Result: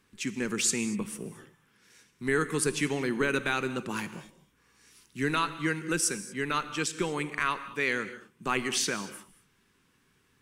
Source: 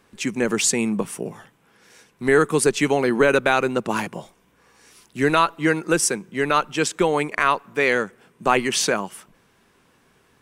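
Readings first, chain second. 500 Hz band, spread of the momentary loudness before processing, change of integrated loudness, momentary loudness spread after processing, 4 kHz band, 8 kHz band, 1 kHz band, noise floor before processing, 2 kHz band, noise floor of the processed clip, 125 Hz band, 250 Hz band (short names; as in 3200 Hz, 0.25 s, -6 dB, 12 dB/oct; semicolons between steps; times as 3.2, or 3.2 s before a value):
-12.5 dB, 11 LU, -9.0 dB, 11 LU, -6.5 dB, -6.5 dB, -11.0 dB, -61 dBFS, -8.0 dB, -68 dBFS, -6.5 dB, -8.5 dB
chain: bell 650 Hz -12.5 dB 1.1 oct; non-linear reverb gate 0.26 s flat, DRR 12 dB; gain -6.5 dB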